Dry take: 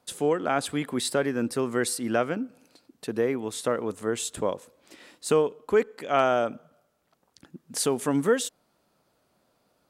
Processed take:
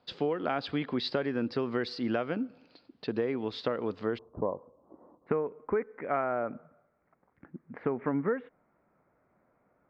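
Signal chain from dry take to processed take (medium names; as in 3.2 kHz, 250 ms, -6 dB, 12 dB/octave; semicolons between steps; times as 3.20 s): Chebyshev low-pass 4.8 kHz, order 5, from 4.17 s 1.1 kHz, from 5.26 s 2.2 kHz; compression 6:1, threshold -26 dBFS, peak gain reduction 9 dB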